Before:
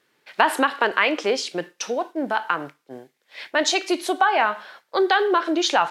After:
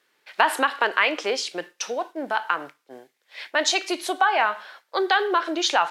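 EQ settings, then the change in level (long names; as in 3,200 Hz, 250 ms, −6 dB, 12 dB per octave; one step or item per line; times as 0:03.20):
high-pass filter 540 Hz 6 dB per octave
0.0 dB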